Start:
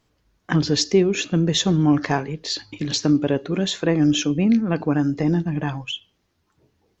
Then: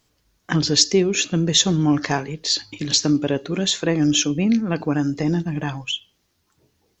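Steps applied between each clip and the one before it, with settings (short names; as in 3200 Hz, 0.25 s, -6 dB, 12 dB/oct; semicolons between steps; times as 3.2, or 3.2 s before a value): high shelf 3800 Hz +11.5 dB; gain -1 dB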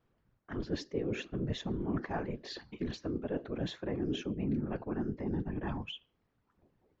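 LPF 1600 Hz 12 dB/oct; reverse; compressor 6:1, threshold -26 dBFS, peak gain reduction 13.5 dB; reverse; whisperiser; gain -6 dB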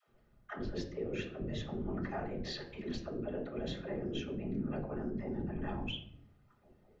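compressor 2.5:1, threshold -45 dBFS, peak gain reduction 11.5 dB; dispersion lows, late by 87 ms, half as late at 370 Hz; reverb RT60 0.70 s, pre-delay 5 ms, DRR 1 dB; gain +2.5 dB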